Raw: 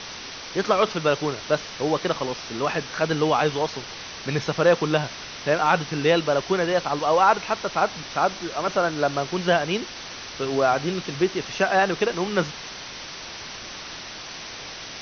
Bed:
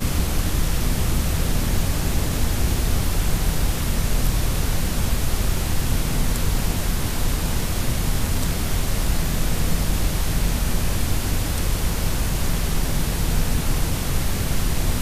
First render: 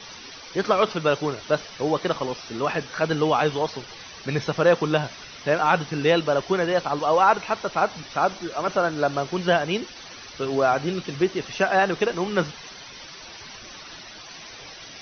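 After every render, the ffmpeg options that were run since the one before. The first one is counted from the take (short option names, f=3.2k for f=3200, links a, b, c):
-af "afftdn=nr=11:nf=-37"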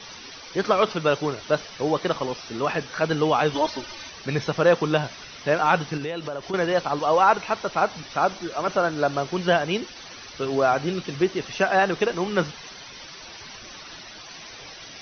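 -filter_complex "[0:a]asettb=1/sr,asplit=3[a][b][c];[a]atrim=end=3.544[d];[b]atrim=start=3.54:end=4.1,asetpts=PTS-STARTPTS,afade=t=in:d=0.004:c=qsin,afade=t=out:st=0.556:d=0.004:c=qsin,aecho=1:1:3.3:0.95,atrim=end_sample=24696[e];[c]atrim=start=4.096[f];[d][e]acrossfade=d=0.004:c1=hsin:c2=qsin[g];[g][f]acrossfade=d=0.004:c1=qsin:c2=hsin,asettb=1/sr,asplit=3[h][i][j];[h]atrim=end=5.974[k];[i]atrim=start=5.97:end=6.54,asetpts=PTS-STARTPTS,afade=t=in:d=0.004:c=qsin,afade=t=out:st=0.566:d=0.004:c=qsin,acompressor=threshold=-27dB:ratio=6:attack=3.2:release=140:knee=1:detection=peak[l];[j]atrim=start=6.536[m];[k][l]acrossfade=d=0.004:c1=hsin:c2=qsin[n];[n][m]acrossfade=d=0.004:c1=qsin:c2=hsin"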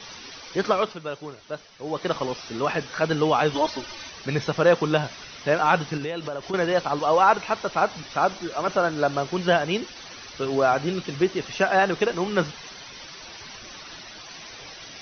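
-filter_complex "[0:a]asplit=3[a][b][c];[a]atrim=end=0.99,asetpts=PTS-STARTPTS,afade=t=out:st=0.66:d=0.33:silence=0.281838[d];[b]atrim=start=0.99:end=1.82,asetpts=PTS-STARTPTS,volume=-11dB[e];[c]atrim=start=1.82,asetpts=PTS-STARTPTS,afade=t=in:d=0.33:silence=0.281838[f];[d][e][f]concat=n=3:v=0:a=1"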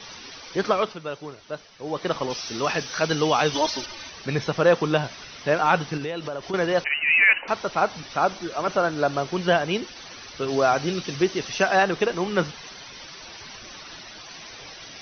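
-filter_complex "[0:a]asettb=1/sr,asplit=3[a][b][c];[a]atrim=end=2.304[d];[b]atrim=start=2.3:end=3.86,asetpts=PTS-STARTPTS,afade=t=in:d=0.004:c=qsin,afade=t=out:st=1.556:d=0.004:c=qsin,aemphasis=mode=production:type=75fm[e];[c]atrim=start=3.856[f];[d][e]acrossfade=d=0.004:c1=hsin:c2=qsin[g];[g][f]acrossfade=d=0.004:c1=qsin:c2=hsin,asettb=1/sr,asplit=3[h][i][j];[h]atrim=end=6.844[k];[i]atrim=start=6.84:end=7.48,asetpts=PTS-STARTPTS,afade=t=in:d=0.004:c=qsin,afade=t=out:st=0.636:d=0.004:c=qsin,lowpass=f=2.6k:t=q:w=0.5098,lowpass=f=2.6k:t=q:w=0.6013,lowpass=f=2.6k:t=q:w=0.9,lowpass=f=2.6k:t=q:w=2.563,afreqshift=-3100[l];[j]atrim=start=7.476[m];[k][l]acrossfade=d=0.004:c1=hsin:c2=qsin[n];[n][m]acrossfade=d=0.004:c1=qsin:c2=hsin,asettb=1/sr,asplit=3[o][p][q];[o]atrim=end=10.484[r];[p]atrim=start=10.48:end=11.83,asetpts=PTS-STARTPTS,afade=t=in:d=0.004:c=qsin,afade=t=out:st=1.346:d=0.004:c=qsin,highshelf=f=4.9k:g=9.5[s];[q]atrim=start=11.826[t];[r][s]acrossfade=d=0.004:c1=hsin:c2=qsin[u];[u][t]acrossfade=d=0.004:c1=qsin:c2=hsin"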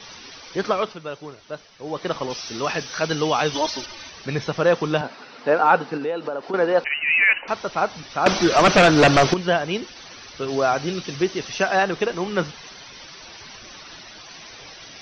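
-filter_complex "[0:a]asettb=1/sr,asplit=3[a][b][c];[a]atrim=end=5.014[d];[b]atrim=start=5.01:end=6.84,asetpts=PTS-STARTPTS,afade=t=in:d=0.004:c=qsin,afade=t=out:st=1.826:d=0.004:c=qsin,highpass=220,equalizer=f=250:t=q:w=4:g=9,equalizer=f=480:t=q:w=4:g=7,equalizer=f=840:t=q:w=4:g=6,equalizer=f=1.4k:t=q:w=4:g=4,equalizer=f=2.1k:t=q:w=4:g=-4,equalizer=f=3.3k:t=q:w=4:g=-8,lowpass=f=4.5k:w=0.5412,lowpass=f=4.5k:w=1.3066[e];[c]atrim=start=6.836[f];[d][e]acrossfade=d=0.004:c1=hsin:c2=qsin[g];[g][f]acrossfade=d=0.004:c1=qsin:c2=hsin,asettb=1/sr,asplit=3[h][i][j];[h]atrim=end=8.264[k];[i]atrim=start=8.26:end=9.34,asetpts=PTS-STARTPTS,afade=t=in:d=0.004:c=qsin,afade=t=out:st=1.076:d=0.004:c=qsin,aeval=exprs='0.376*sin(PI/2*3.55*val(0)/0.376)':c=same[l];[j]atrim=start=9.336[m];[k][l]acrossfade=d=0.004:c1=hsin:c2=qsin[n];[n][m]acrossfade=d=0.004:c1=qsin:c2=hsin"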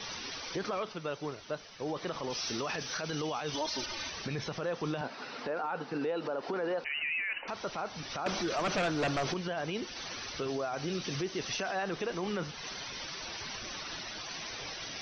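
-af "acompressor=threshold=-32dB:ratio=2,alimiter=level_in=2dB:limit=-24dB:level=0:latency=1:release=24,volume=-2dB"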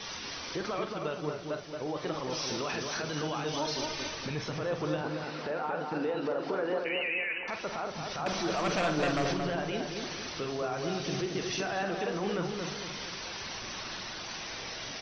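-filter_complex "[0:a]asplit=2[a][b];[b]adelay=46,volume=-8dB[c];[a][c]amix=inputs=2:normalize=0,asplit=2[d][e];[e]adelay=226,lowpass=f=1.6k:p=1,volume=-3.5dB,asplit=2[f][g];[g]adelay=226,lowpass=f=1.6k:p=1,volume=0.48,asplit=2[h][i];[i]adelay=226,lowpass=f=1.6k:p=1,volume=0.48,asplit=2[j][k];[k]adelay=226,lowpass=f=1.6k:p=1,volume=0.48,asplit=2[l][m];[m]adelay=226,lowpass=f=1.6k:p=1,volume=0.48,asplit=2[n][o];[o]adelay=226,lowpass=f=1.6k:p=1,volume=0.48[p];[d][f][h][j][l][n][p]amix=inputs=7:normalize=0"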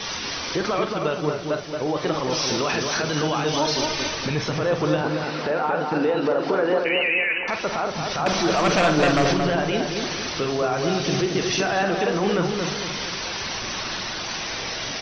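-af "volume=10.5dB"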